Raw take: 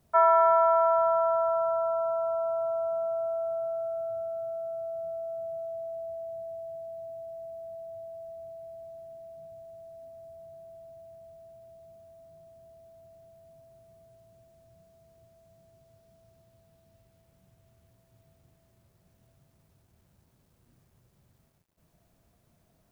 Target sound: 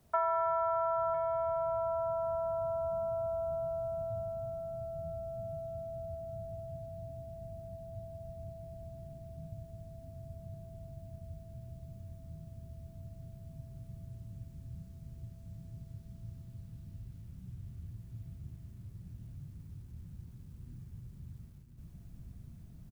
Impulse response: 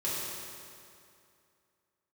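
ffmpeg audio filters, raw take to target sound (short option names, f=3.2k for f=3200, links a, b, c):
-filter_complex "[0:a]asubboost=boost=11:cutoff=180,acrossover=split=130[a][b];[b]acompressor=threshold=-31dB:ratio=4[c];[a][c]amix=inputs=2:normalize=0,aecho=1:1:1001:0.355,volume=1dB"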